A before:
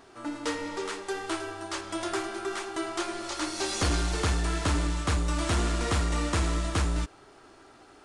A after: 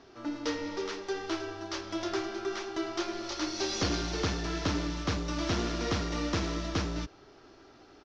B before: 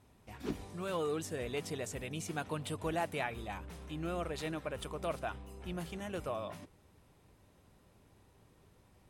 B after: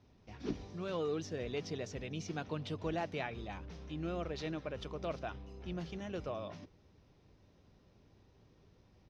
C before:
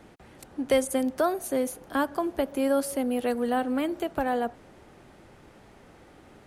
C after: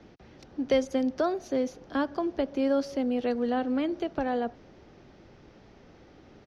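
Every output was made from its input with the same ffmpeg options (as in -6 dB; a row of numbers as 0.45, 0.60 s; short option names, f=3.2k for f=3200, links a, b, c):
-filter_complex "[0:a]firequalizer=gain_entry='entry(370,0);entry(910,-5);entry(5800,1);entry(8300,-28)':delay=0.05:min_phase=1,acrossover=split=100[a][b];[a]asoftclip=type=tanh:threshold=-39.5dB[c];[c][b]amix=inputs=2:normalize=0"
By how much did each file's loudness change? -3.0, -1.5, -1.5 LU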